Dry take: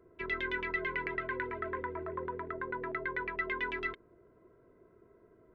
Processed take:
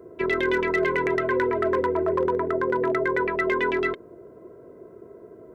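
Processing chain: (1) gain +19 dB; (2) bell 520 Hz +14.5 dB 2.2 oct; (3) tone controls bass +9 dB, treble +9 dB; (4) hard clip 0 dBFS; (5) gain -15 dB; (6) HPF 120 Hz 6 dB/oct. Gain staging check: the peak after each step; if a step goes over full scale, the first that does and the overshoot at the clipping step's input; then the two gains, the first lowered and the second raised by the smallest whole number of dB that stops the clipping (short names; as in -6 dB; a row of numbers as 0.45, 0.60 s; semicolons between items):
-1.5, +3.5, +4.5, 0.0, -15.0, -13.5 dBFS; step 2, 4.5 dB; step 1 +14 dB, step 5 -10 dB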